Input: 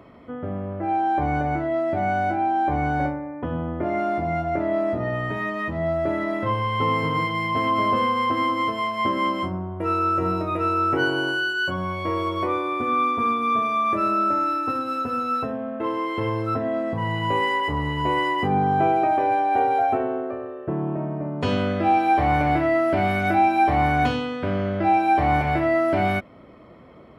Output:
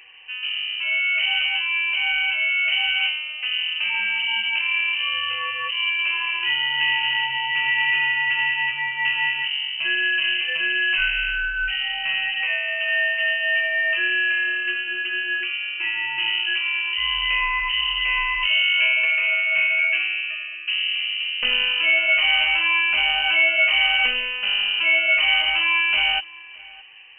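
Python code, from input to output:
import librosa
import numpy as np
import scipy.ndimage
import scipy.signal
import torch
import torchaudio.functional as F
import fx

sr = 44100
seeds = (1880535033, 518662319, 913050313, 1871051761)

p1 = fx.octave_divider(x, sr, octaves=2, level_db=-2.0)
p2 = p1 + fx.echo_single(p1, sr, ms=616, db=-22.5, dry=0)
y = fx.freq_invert(p2, sr, carrier_hz=3000)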